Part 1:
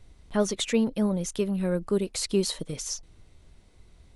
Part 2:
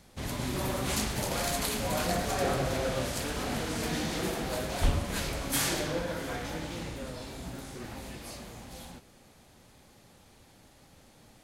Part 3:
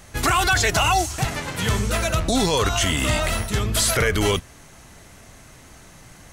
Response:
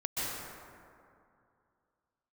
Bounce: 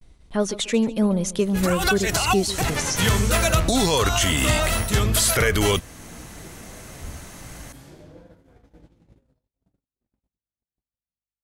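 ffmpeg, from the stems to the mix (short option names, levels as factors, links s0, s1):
-filter_complex "[0:a]volume=1.19,asplit=3[s0][s1][s2];[s1]volume=0.141[s3];[1:a]tiltshelf=f=750:g=7.5,flanger=delay=10:depth=8.4:regen=49:speed=0.66:shape=sinusoidal,aeval=exprs='val(0)+0.00794*(sin(2*PI*50*n/s)+sin(2*PI*2*50*n/s)/2+sin(2*PI*3*50*n/s)/3+sin(2*PI*4*50*n/s)/4+sin(2*PI*5*50*n/s)/5)':c=same,adelay=2200,volume=0.126,asplit=2[s4][s5];[s5]volume=0.112[s6];[2:a]highshelf=f=12000:g=8,adelay=1400,volume=0.944[s7];[s2]apad=whole_len=340610[s8];[s7][s8]sidechaincompress=threshold=0.0224:ratio=8:attack=16:release=117[s9];[s3][s6]amix=inputs=2:normalize=0,aecho=0:1:142|284|426|568:1|0.28|0.0784|0.022[s10];[s0][s4][s9][s10]amix=inputs=4:normalize=0,agate=range=0.00398:threshold=0.00282:ratio=16:detection=peak,dynaudnorm=f=230:g=7:m=1.78,alimiter=limit=0.335:level=0:latency=1:release=465"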